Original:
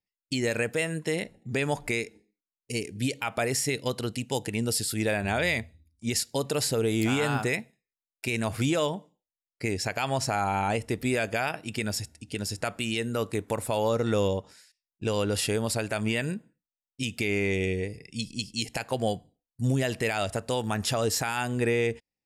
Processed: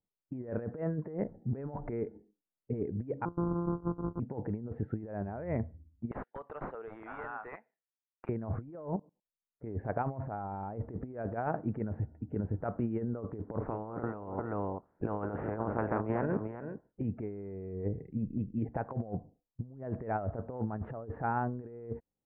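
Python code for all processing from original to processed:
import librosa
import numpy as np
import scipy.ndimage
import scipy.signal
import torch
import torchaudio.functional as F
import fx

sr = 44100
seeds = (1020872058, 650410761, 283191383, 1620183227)

y = fx.chain(x, sr, fx.sample_sort(block=256),
    fx.cheby_ripple(hz=1500.0, ripple_db=9),
    fx.peak_eq(hz=550.0, db=-8.0, octaves=1.3), at=(3.25, 4.2))
y = fx.chain(y, sr, fx.highpass(hz=1500.0, slope=12),
    fx.band_shelf(hz=6200.0, db=14.0, octaves=2.3),
    fx.overload_stage(gain_db=19.0), at=(6.11, 8.29))
y = fx.chain(y, sr, fx.lowpass(hz=1200.0, slope=12),
    fx.level_steps(step_db=22), at=(8.96, 9.64))
y = fx.spec_clip(y, sr, under_db=21, at=(13.6, 17.01), fade=0.02)
y = fx.echo_single(y, sr, ms=390, db=-11.5, at=(13.6, 17.01), fade=0.02)
y = scipy.signal.sosfilt(scipy.signal.bessel(8, 810.0, 'lowpass', norm='mag', fs=sr, output='sos'), y)
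y = fx.over_compress(y, sr, threshold_db=-34.0, ratio=-0.5)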